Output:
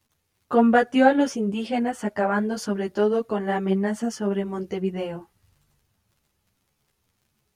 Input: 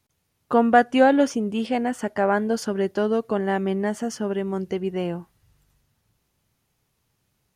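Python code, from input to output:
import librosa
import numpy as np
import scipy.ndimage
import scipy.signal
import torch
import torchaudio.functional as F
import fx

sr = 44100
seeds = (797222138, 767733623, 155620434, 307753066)

y = fx.dmg_crackle(x, sr, seeds[0], per_s=27.0, level_db=-49.0)
y = fx.ensemble(y, sr)
y = F.gain(torch.from_numpy(y), 2.0).numpy()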